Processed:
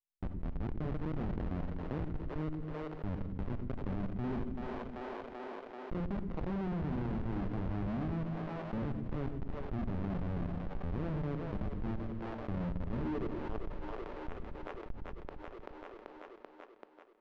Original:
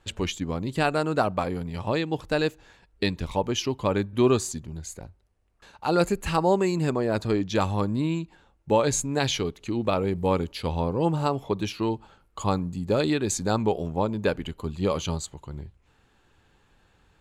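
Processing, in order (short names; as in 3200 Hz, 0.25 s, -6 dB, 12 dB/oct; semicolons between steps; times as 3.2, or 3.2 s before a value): Wiener smoothing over 25 samples; de-hum 53.16 Hz, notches 34; dynamic EQ 1100 Hz, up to +6 dB, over -41 dBFS, Q 1.7; band-pass sweep 220 Hz -> 3600 Hz, 12.99–13.73; transient shaper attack -10 dB, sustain +4 dB; Schmitt trigger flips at -32.5 dBFS; tape spacing loss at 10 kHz 45 dB; split-band echo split 380 Hz, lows 0.115 s, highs 0.386 s, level -9 dB; two-slope reverb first 0.91 s, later 2.5 s, from -27 dB, DRR 15.5 dB; fast leveller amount 70%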